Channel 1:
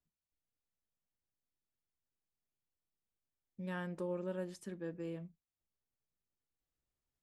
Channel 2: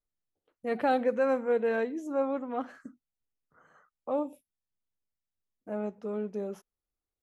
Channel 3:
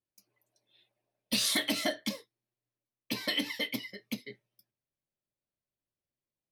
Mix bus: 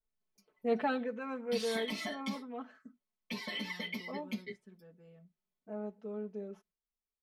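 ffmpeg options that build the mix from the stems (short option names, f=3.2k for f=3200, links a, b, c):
-filter_complex "[0:a]agate=range=-33dB:threshold=-52dB:ratio=3:detection=peak,volume=-15dB[a];[1:a]adynamicequalizer=threshold=0.00355:dfrequency=3300:dqfactor=0.87:tfrequency=3300:tqfactor=0.87:attack=5:release=100:ratio=0.375:range=3:mode=boostabove:tftype=bell,volume=-3.5dB,afade=t=out:st=0.67:d=0.42:silence=0.375837[b];[2:a]aecho=1:1:5.5:0.93,alimiter=level_in=1.5dB:limit=-24dB:level=0:latency=1:release=48,volume=-1.5dB,adelay=200,volume=-5dB[c];[a][b][c]amix=inputs=3:normalize=0,aemphasis=mode=reproduction:type=50kf,aecho=1:1:4.6:0.93"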